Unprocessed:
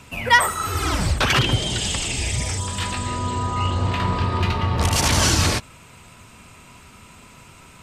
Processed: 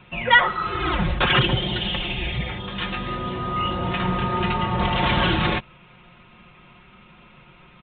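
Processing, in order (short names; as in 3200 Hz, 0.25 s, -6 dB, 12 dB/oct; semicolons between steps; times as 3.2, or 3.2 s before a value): comb 5.6 ms, depth 77%; in parallel at -7 dB: sample gate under -31 dBFS; on the sum: downsampling 8000 Hz; gain -4.5 dB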